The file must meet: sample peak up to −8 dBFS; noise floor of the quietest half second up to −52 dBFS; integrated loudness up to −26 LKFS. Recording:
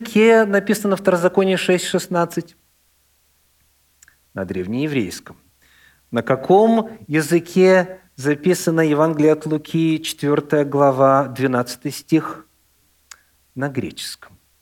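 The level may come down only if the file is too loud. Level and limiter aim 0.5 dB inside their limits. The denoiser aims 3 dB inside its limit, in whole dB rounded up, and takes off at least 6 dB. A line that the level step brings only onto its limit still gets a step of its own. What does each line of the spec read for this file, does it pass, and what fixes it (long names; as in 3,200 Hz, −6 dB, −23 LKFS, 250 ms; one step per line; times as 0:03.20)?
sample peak −4.0 dBFS: out of spec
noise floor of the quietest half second −61 dBFS: in spec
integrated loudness −18.0 LKFS: out of spec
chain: level −8.5 dB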